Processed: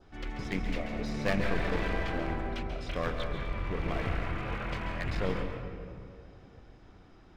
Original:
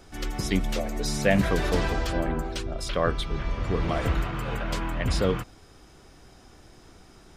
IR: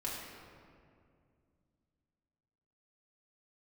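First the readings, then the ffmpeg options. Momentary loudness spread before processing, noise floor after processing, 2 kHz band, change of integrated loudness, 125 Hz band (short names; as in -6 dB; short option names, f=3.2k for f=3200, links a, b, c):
8 LU, -55 dBFS, -4.0 dB, -7.0 dB, -6.5 dB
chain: -filter_complex "[0:a]lowpass=3.2k,adynamicequalizer=threshold=0.00355:dfrequency=2200:dqfactor=2:tfrequency=2200:tqfactor=2:attack=5:release=100:ratio=0.375:range=3.5:mode=boostabove:tftype=bell,aeval=exprs='clip(val(0),-1,0.0398)':c=same,asplit=2[a][b];[1:a]atrim=start_sample=2205,adelay=136[c];[b][c]afir=irnorm=-1:irlink=0,volume=-6.5dB[d];[a][d]amix=inputs=2:normalize=0,volume=-6.5dB"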